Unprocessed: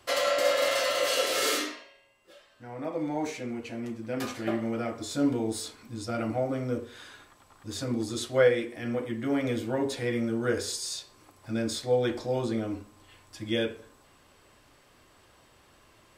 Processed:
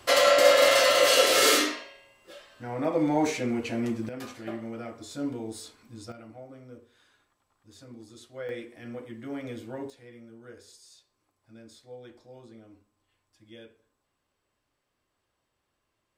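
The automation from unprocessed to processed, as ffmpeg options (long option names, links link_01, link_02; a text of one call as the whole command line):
ffmpeg -i in.wav -af "asetnsamples=nb_out_samples=441:pad=0,asendcmd='4.09 volume volume -6.5dB;6.12 volume volume -16.5dB;8.49 volume volume -8.5dB;9.9 volume volume -20dB',volume=6.5dB" out.wav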